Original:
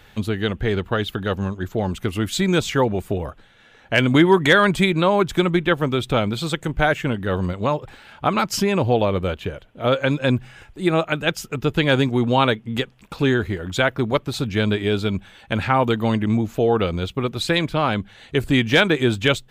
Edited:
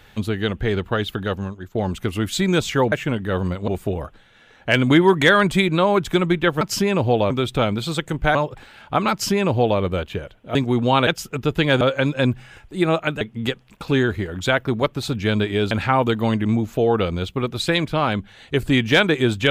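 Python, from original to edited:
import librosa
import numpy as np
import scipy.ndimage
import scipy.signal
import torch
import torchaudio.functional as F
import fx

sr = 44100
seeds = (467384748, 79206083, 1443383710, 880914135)

y = fx.edit(x, sr, fx.fade_out_to(start_s=1.23, length_s=0.52, floor_db=-13.0),
    fx.move(start_s=6.9, length_s=0.76, to_s=2.92),
    fx.duplicate(start_s=8.42, length_s=0.69, to_s=5.85),
    fx.swap(start_s=9.86, length_s=1.4, other_s=12.0, other_length_s=0.52),
    fx.cut(start_s=15.02, length_s=0.5), tone=tone)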